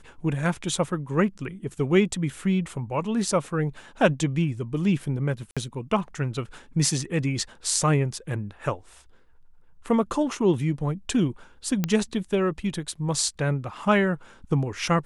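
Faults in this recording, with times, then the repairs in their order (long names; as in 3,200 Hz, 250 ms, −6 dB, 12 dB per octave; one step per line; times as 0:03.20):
0:05.51–0:05.57: drop-out 56 ms
0:11.84: click −10 dBFS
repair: click removal
repair the gap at 0:05.51, 56 ms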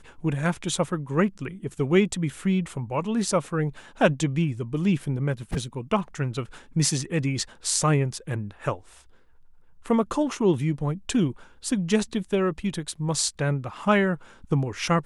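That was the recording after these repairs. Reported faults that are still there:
none of them is left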